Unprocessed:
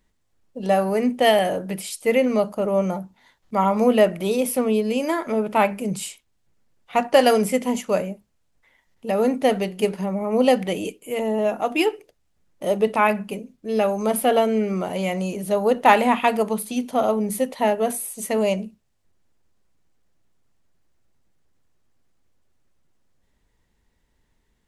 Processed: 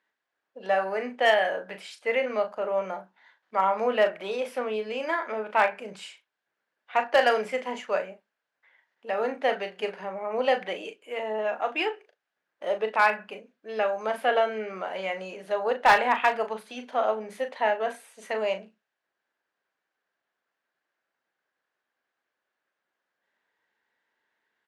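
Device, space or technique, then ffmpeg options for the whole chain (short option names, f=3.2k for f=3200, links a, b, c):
megaphone: -filter_complex "[0:a]highpass=580,lowpass=3.4k,equalizer=f=1.6k:t=o:w=0.32:g=9.5,asoftclip=type=hard:threshold=-9.5dB,asplit=2[a][b];[b]adelay=37,volume=-9dB[c];[a][c]amix=inputs=2:normalize=0,volume=-3dB"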